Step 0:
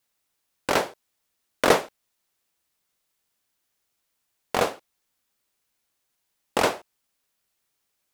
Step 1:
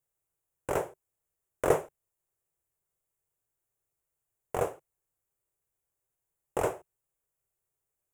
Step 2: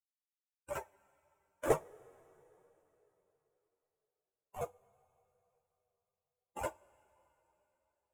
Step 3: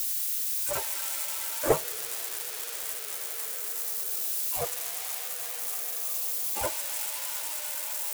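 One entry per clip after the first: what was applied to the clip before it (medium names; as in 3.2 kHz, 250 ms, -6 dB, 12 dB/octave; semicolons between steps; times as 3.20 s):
FFT filter 150 Hz 0 dB, 220 Hz -18 dB, 380 Hz -3 dB, 2.8 kHz -17 dB, 4.4 kHz -30 dB, 7.2 kHz -8 dB
expander on every frequency bin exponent 3; two-slope reverb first 0.24 s, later 3.8 s, from -20 dB, DRR 14.5 dB; three-phase chorus; trim +2 dB
zero-crossing glitches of -27 dBFS; trim +6 dB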